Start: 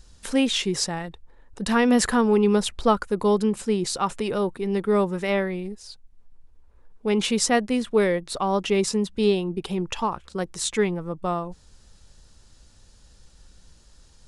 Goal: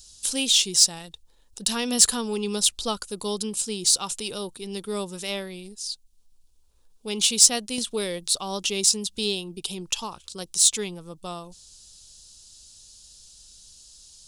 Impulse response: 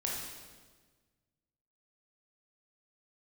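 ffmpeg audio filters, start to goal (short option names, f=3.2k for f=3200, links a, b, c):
-filter_complex "[0:a]aexciter=amount=5.8:drive=8.5:freq=2.9k,asettb=1/sr,asplit=3[a][b][c];[a]atrim=end=7.784[d];[b]atrim=start=7.78:end=9.28,asetpts=PTS-STARTPTS,afade=t=in:d=0.004:c=qsin,afade=t=out:st=1.496:d=0.004:c=qsin,acompressor=mode=upward:threshold=-15dB:ratio=2.5[e];[c]atrim=start=9.276[f];[d][e]acrossfade=d=0.004:c1=hsin:c2=qsin[g];[g][f]acrossfade=d=0.004:c1=qsin:c2=hsin,volume=-9.5dB"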